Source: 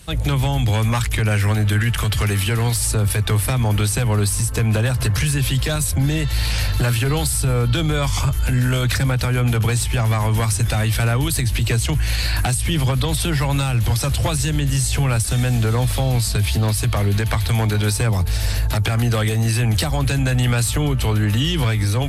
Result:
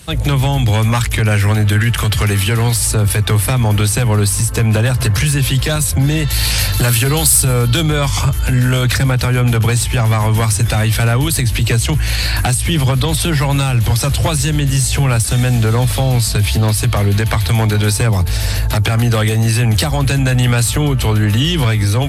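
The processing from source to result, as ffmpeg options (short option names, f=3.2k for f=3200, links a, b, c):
-filter_complex "[0:a]asettb=1/sr,asplit=3[a][b][c];[a]atrim=end=6.304[d];[b]atrim=start=6.3:end=7.83,asetpts=PTS-STARTPTS,afade=t=in:d=0.004:c=qsin,afade=t=out:st=1.526:d=0.004:c=qsin,aemphasis=mode=production:type=cd[e];[c]atrim=start=7.826[f];[d][e]acrossfade=d=0.004:c1=hsin:c2=qsin[g];[g][f]acrossfade=d=0.004:c1=qsin:c2=hsin,highpass=53,acontrast=41"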